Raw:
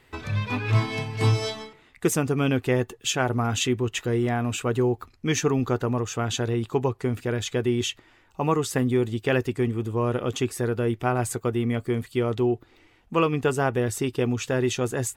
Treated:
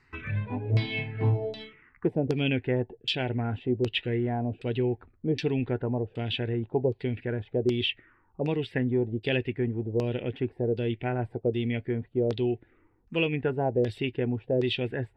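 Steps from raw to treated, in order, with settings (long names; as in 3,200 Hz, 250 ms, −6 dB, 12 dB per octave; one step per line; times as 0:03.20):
phaser swept by the level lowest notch 580 Hz, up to 1,200 Hz, full sweep at −25.5 dBFS
auto-filter low-pass saw down 1.3 Hz 470–4,900 Hz
level −3.5 dB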